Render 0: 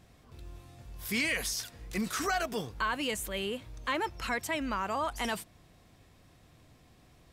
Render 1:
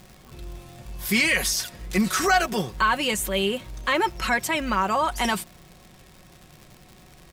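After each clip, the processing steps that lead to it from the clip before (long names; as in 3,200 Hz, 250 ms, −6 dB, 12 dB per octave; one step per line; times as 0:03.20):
comb filter 5.4 ms, depth 52%
surface crackle 160 per second −45 dBFS
level +8.5 dB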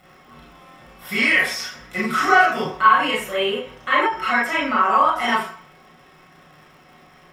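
convolution reverb RT60 0.50 s, pre-delay 25 ms, DRR −5.5 dB
every ending faded ahead of time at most 150 dB per second
level −10.5 dB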